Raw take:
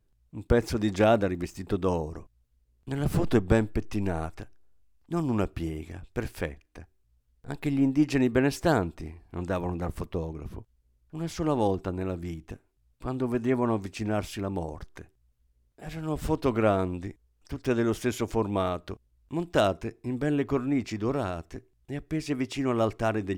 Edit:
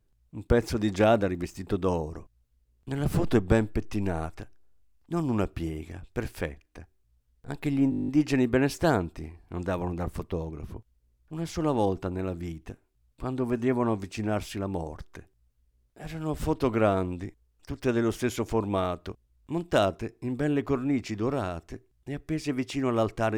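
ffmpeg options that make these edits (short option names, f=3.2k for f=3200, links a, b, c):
-filter_complex "[0:a]asplit=10[a][b][c][d][e][f][g][h][i][j];[a]atrim=end=7.922[k];[b]atrim=start=7.898:end=7.922[l];[c]atrim=start=7.898:end=7.922[m];[d]atrim=start=7.898:end=7.922[n];[e]atrim=start=7.898:end=7.922[o];[f]atrim=start=7.898:end=7.922[p];[g]atrim=start=7.898:end=7.922[q];[h]atrim=start=7.898:end=7.922[r];[i]atrim=start=7.898:end=7.922[s];[j]atrim=start=7.898[t];[k][l]acrossfade=d=0.004:c1=hsin:c2=hsin[u];[u][m]acrossfade=d=0.004:c1=hsin:c2=hsin[v];[v][n]acrossfade=d=0.004:c1=hsin:c2=hsin[w];[w][o]acrossfade=d=0.004:c1=hsin:c2=hsin[x];[x][p]acrossfade=d=0.004:c1=hsin:c2=hsin[y];[y][q]acrossfade=d=0.004:c1=hsin:c2=hsin[z];[z][r]acrossfade=d=0.004:c1=hsin:c2=hsin[aa];[aa][s]acrossfade=d=0.004:c1=hsin:c2=hsin[ab];[ab][t]acrossfade=d=0.004:c1=hsin:c2=hsin"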